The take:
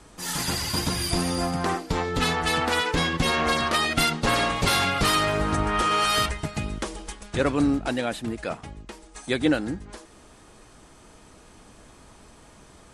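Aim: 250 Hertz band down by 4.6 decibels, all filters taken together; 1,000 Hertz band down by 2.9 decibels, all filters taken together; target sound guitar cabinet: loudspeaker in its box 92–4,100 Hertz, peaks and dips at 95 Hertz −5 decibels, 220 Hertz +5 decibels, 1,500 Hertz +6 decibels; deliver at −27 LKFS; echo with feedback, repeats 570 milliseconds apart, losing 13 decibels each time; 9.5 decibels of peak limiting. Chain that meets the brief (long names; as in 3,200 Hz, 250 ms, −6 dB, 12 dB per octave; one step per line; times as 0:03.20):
parametric band 250 Hz −7.5 dB
parametric band 1,000 Hz −6 dB
brickwall limiter −20.5 dBFS
loudspeaker in its box 92–4,100 Hz, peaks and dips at 95 Hz −5 dB, 220 Hz +5 dB, 1,500 Hz +6 dB
repeating echo 570 ms, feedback 22%, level −13 dB
level +3.5 dB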